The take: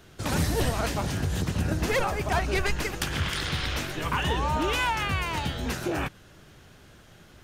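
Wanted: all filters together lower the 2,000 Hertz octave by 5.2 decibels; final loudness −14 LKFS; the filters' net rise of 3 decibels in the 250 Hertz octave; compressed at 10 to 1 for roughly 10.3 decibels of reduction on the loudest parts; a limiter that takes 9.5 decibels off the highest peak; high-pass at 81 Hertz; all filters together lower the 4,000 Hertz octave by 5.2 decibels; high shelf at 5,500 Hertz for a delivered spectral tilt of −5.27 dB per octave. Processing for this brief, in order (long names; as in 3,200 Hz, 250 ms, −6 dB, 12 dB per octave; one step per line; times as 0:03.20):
high-pass filter 81 Hz
parametric band 250 Hz +4.5 dB
parametric band 2,000 Hz −5.5 dB
parametric band 4,000 Hz −3.5 dB
high-shelf EQ 5,500 Hz −3.5 dB
downward compressor 10 to 1, threshold −32 dBFS
level +26 dB
brickwall limiter −5 dBFS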